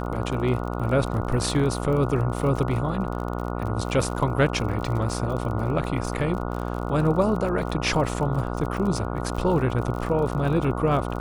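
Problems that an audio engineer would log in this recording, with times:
buzz 60 Hz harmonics 24 -29 dBFS
crackle 41 per s -31 dBFS

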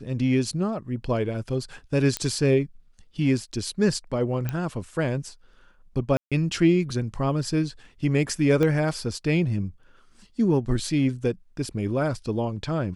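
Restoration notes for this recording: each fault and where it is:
2.17 s: pop -10 dBFS
4.49 s: pop -15 dBFS
6.17–6.32 s: dropout 146 ms
8.63 s: pop -13 dBFS

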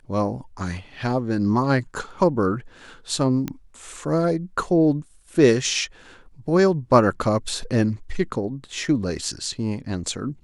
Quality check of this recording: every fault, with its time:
3.48 s: pop -14 dBFS

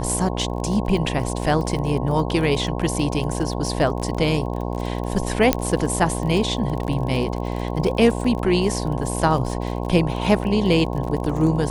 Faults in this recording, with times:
buzz 60 Hz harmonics 18 -26 dBFS
crackle 32 per s -28 dBFS
5.53 s: pop -1 dBFS

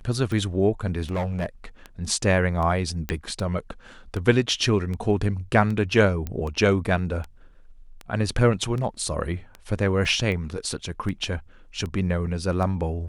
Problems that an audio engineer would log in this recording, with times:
tick 78 rpm -21 dBFS
1.10–1.46 s: clipped -22.5 dBFS
3.09 s: pop -13 dBFS
6.27 s: pop -17 dBFS
10.05 s: dropout 2.6 ms

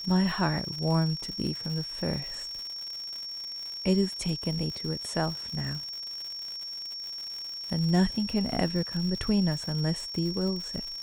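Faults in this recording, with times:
crackle 160 per s -35 dBFS
whine 5.5 kHz -35 dBFS

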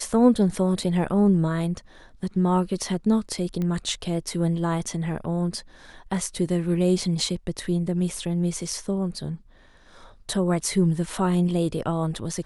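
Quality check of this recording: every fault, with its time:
3.62 s: pop -18 dBFS

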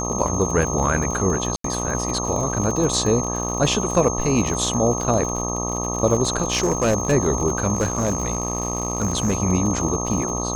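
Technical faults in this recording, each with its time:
buzz 60 Hz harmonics 21 -27 dBFS
crackle 78 per s -27 dBFS
whine 6.4 kHz -27 dBFS
1.56–1.64 s: dropout 83 ms
6.50–7.13 s: clipped -14 dBFS
7.74–9.38 s: clipped -15.5 dBFS

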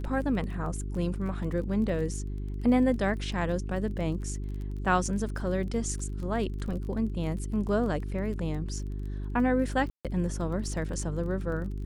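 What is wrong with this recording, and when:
crackle 22 per s -37 dBFS
hum 50 Hz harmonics 8 -34 dBFS
9.90–10.05 s: dropout 147 ms

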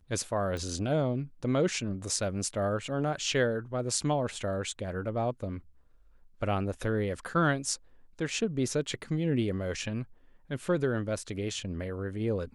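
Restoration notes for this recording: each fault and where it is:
0.57 s: pop -24 dBFS

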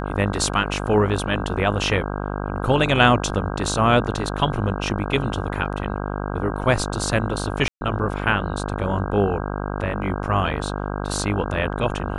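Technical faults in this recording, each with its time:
buzz 50 Hz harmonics 32 -27 dBFS
7.68–7.81 s: dropout 131 ms

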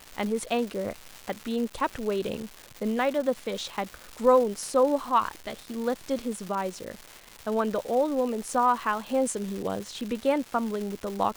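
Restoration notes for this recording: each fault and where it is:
crackle 470 per s -33 dBFS

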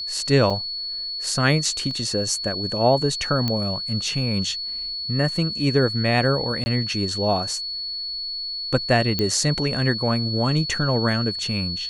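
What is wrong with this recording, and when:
whine 4.4 kHz -27 dBFS
0.50–0.51 s: dropout 5.1 ms
1.91 s: dropout 2.2 ms
3.48 s: pop -10 dBFS
6.64–6.66 s: dropout 20 ms
9.19 s: pop -9 dBFS

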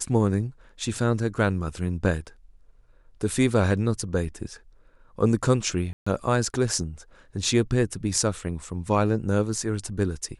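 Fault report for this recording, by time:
5.93–6.07 s: dropout 135 ms

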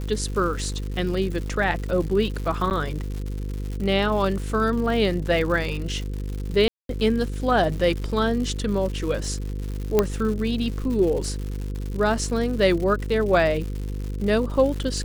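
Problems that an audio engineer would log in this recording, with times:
buzz 50 Hz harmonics 10 -29 dBFS
crackle 200 per s -31 dBFS
2.70–2.71 s: dropout 9.5 ms
6.68–6.89 s: dropout 212 ms
9.99 s: pop -5 dBFS

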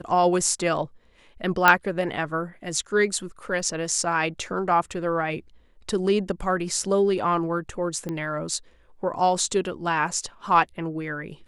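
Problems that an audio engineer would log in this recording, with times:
1.68 s: pop -2 dBFS
8.09 s: pop -18 dBFS

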